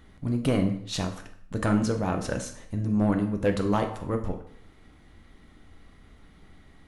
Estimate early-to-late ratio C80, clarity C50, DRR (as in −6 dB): 13.0 dB, 10.0 dB, 4.5 dB